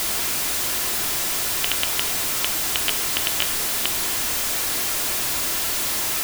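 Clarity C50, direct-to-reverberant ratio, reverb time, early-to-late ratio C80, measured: 16.5 dB, 10.0 dB, 0.70 s, 20.5 dB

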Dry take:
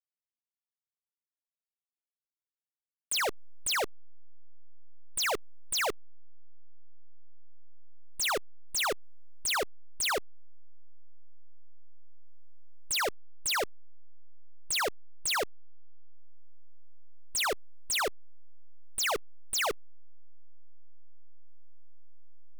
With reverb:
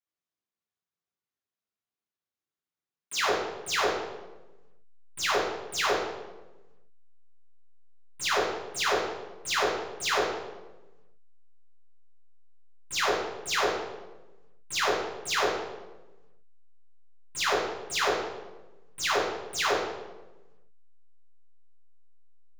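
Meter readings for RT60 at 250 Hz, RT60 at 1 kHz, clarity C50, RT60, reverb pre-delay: 1.5 s, 1.0 s, 1.5 dB, 1.1 s, 3 ms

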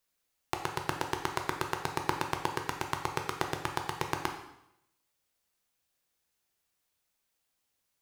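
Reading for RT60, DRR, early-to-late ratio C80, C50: 0.80 s, 3.0 dB, 9.5 dB, 7.0 dB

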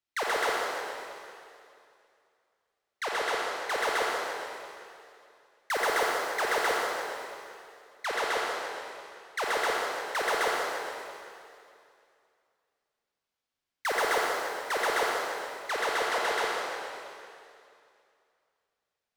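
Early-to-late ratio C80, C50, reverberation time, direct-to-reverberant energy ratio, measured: -0.5 dB, -2.5 dB, 2.5 s, -3.5 dB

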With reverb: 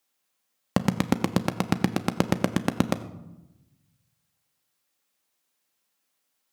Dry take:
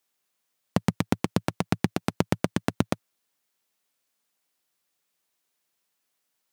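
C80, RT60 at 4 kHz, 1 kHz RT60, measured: 15.5 dB, 0.55 s, 0.95 s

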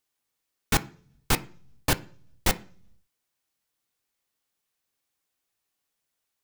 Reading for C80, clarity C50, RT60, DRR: 25.0 dB, 20.0 dB, 0.50 s, 9.0 dB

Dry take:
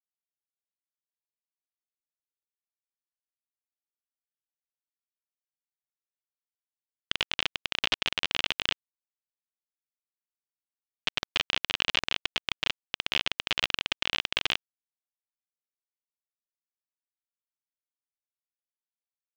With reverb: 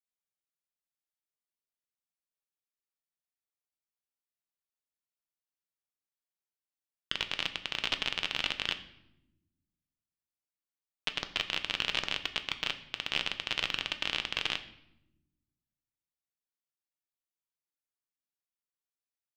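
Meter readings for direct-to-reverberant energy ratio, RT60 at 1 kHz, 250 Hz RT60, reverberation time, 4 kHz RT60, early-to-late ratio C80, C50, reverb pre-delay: 8.0 dB, 0.80 s, 1.6 s, 0.90 s, 0.65 s, 16.0 dB, 13.5 dB, 6 ms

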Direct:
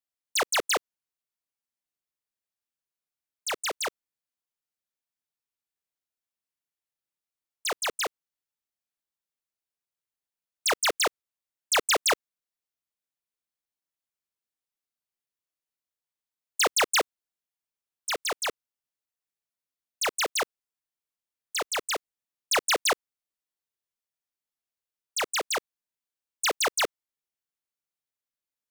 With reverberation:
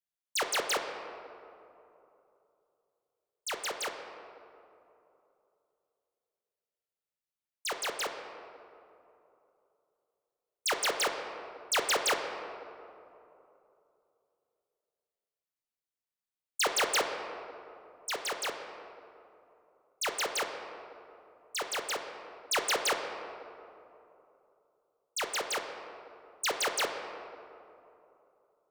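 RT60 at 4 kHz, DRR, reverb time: 1.3 s, 4.0 dB, 2.9 s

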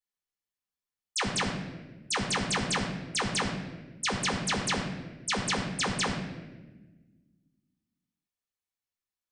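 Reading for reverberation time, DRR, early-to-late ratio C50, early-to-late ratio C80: 1.2 s, -2.0 dB, 5.0 dB, 6.5 dB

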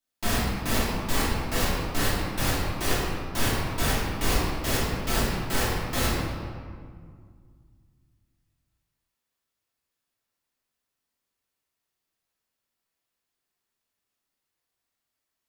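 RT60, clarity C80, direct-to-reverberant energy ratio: 2.0 s, 0.5 dB, -9.5 dB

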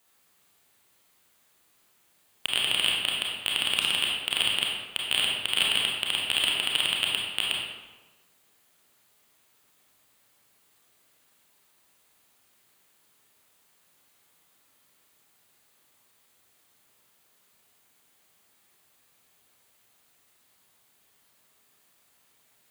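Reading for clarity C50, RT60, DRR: 0.0 dB, 1.2 s, -2.5 dB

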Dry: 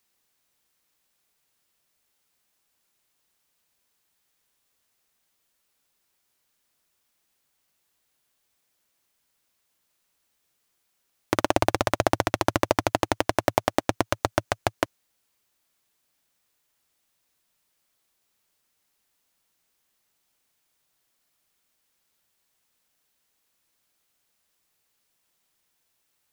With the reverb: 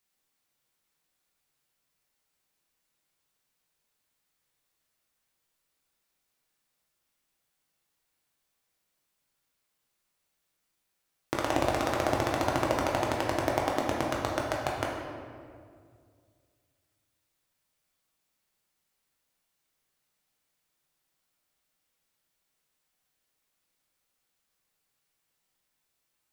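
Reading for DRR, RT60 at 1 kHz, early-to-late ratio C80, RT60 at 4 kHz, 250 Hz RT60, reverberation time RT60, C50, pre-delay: -2.5 dB, 1.9 s, 3.5 dB, 1.2 s, 2.5 s, 2.1 s, 1.5 dB, 6 ms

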